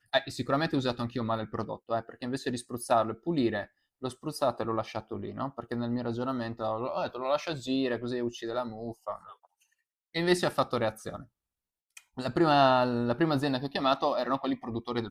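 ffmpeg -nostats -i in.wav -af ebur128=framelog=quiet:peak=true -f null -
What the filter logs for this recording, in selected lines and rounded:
Integrated loudness:
  I:         -30.5 LUFS
  Threshold: -40.8 LUFS
Loudness range:
  LRA:         5.8 LU
  Threshold: -51.3 LUFS
  LRA low:   -33.6 LUFS
  LRA high:  -27.8 LUFS
True peak:
  Peak:      -10.5 dBFS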